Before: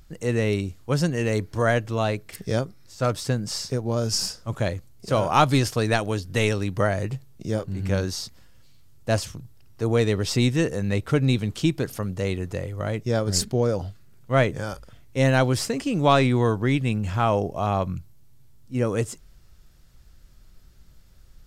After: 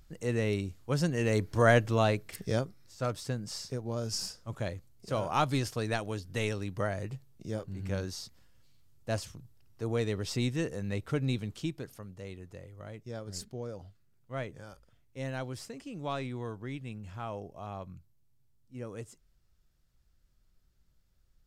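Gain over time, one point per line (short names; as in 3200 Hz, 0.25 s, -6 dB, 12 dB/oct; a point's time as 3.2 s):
0.94 s -7 dB
1.79 s -0.5 dB
3.19 s -10 dB
11.39 s -10 dB
12.07 s -17.5 dB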